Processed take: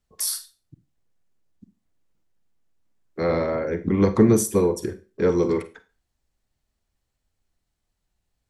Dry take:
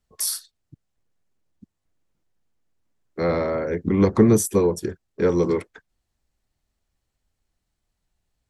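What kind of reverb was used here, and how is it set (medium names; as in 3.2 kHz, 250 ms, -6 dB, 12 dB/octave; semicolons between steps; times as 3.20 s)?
Schroeder reverb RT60 0.31 s, combs from 33 ms, DRR 11 dB; trim -1 dB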